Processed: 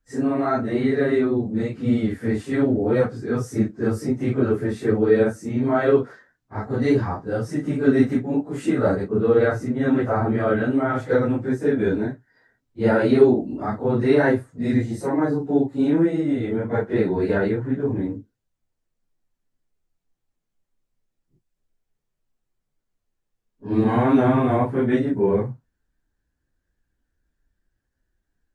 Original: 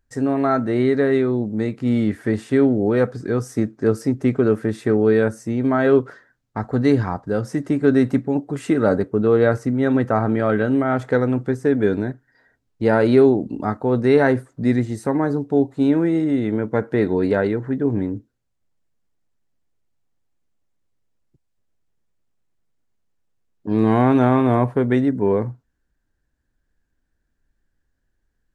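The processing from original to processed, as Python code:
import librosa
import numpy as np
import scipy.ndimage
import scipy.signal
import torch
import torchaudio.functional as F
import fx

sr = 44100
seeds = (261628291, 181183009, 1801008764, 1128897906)

y = fx.phase_scramble(x, sr, seeds[0], window_ms=100)
y = y * 10.0 ** (-2.0 / 20.0)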